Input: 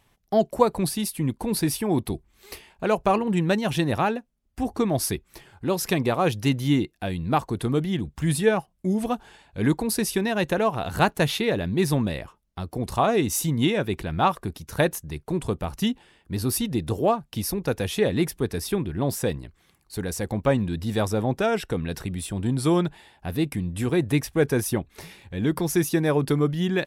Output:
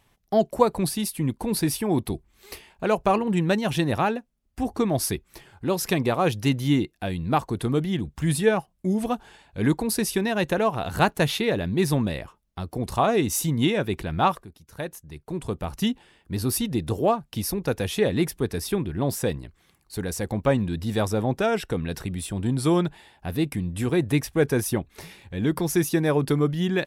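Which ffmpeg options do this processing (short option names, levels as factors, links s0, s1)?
-filter_complex "[0:a]asplit=2[s0][s1];[s0]atrim=end=14.43,asetpts=PTS-STARTPTS,afade=t=out:st=14.426:d=0.004:c=hsin:silence=0.211349[s2];[s1]atrim=start=14.43,asetpts=PTS-STARTPTS,afade=t=in:d=1.32:c=qua:silence=0.211349[s3];[s2][s3]concat=n=2:v=0:a=1"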